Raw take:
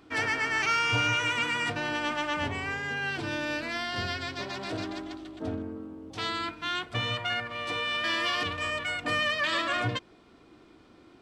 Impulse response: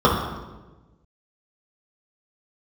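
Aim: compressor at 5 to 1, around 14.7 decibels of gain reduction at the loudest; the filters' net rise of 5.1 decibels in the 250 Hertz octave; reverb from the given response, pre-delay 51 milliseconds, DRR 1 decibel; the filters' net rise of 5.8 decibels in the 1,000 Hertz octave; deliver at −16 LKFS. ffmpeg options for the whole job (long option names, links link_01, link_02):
-filter_complex "[0:a]equalizer=frequency=250:width_type=o:gain=6,equalizer=frequency=1000:width_type=o:gain=7.5,acompressor=threshold=-37dB:ratio=5,asplit=2[link_01][link_02];[1:a]atrim=start_sample=2205,adelay=51[link_03];[link_02][link_03]afir=irnorm=-1:irlink=0,volume=-25dB[link_04];[link_01][link_04]amix=inputs=2:normalize=0,volume=19.5dB"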